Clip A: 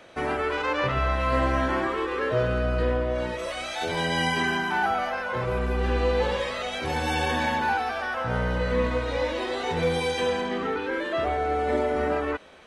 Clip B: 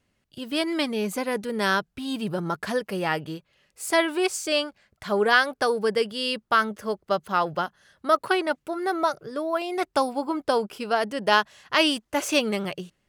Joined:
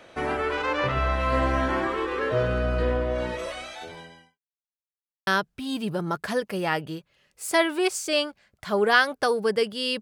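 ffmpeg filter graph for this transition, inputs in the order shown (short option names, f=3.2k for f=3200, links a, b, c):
-filter_complex "[0:a]apad=whole_dur=10.01,atrim=end=10.01,asplit=2[a][b];[a]atrim=end=4.39,asetpts=PTS-STARTPTS,afade=t=out:st=3.4:d=0.99:c=qua[c];[b]atrim=start=4.39:end=5.27,asetpts=PTS-STARTPTS,volume=0[d];[1:a]atrim=start=1.66:end=6.4,asetpts=PTS-STARTPTS,afade=t=in:d=0.004:c=hsin[e];[c][d][e]concat=n=3:v=0:a=1"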